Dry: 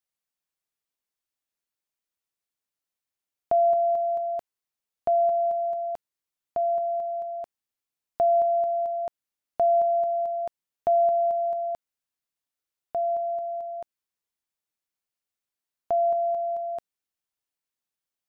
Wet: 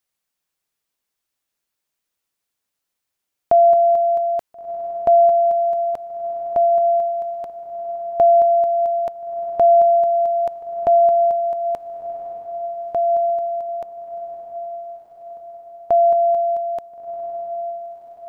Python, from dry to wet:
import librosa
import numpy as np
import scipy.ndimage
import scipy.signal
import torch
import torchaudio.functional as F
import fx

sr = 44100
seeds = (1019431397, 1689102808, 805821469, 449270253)

y = fx.echo_diffused(x, sr, ms=1395, feedback_pct=52, wet_db=-12.0)
y = F.gain(torch.from_numpy(y), 8.5).numpy()